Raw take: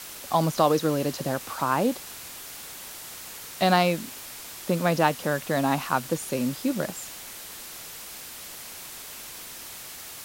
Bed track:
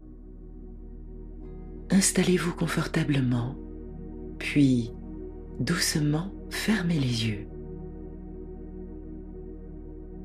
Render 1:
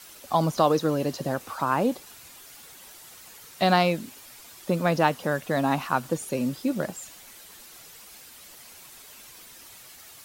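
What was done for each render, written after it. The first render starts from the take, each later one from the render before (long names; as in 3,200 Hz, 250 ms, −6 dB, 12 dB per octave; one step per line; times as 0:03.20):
broadband denoise 9 dB, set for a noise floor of −41 dBFS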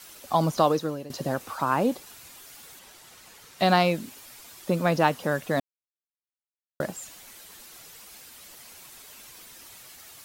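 0:00.63–0:01.10: fade out, to −17.5 dB
0:02.79–0:03.60: high-shelf EQ 8,400 Hz −8.5 dB
0:05.60–0:06.80: silence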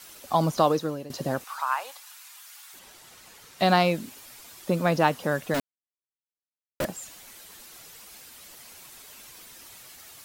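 0:01.44–0:02.74: high-pass filter 890 Hz 24 dB per octave
0:05.54–0:06.85: log-companded quantiser 2 bits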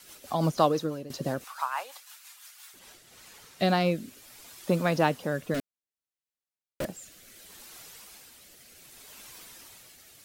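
rotating-speaker cabinet horn 6 Hz, later 0.65 Hz, at 0:02.43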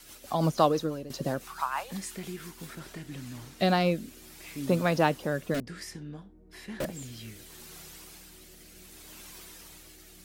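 mix in bed track −16.5 dB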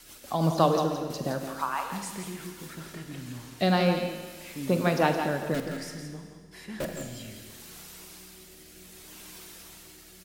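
single-tap delay 168 ms −8 dB
four-comb reverb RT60 1.7 s, combs from 33 ms, DRR 6.5 dB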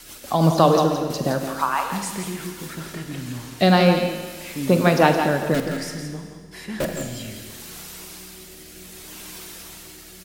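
level +8 dB
brickwall limiter −2 dBFS, peak gain reduction 2.5 dB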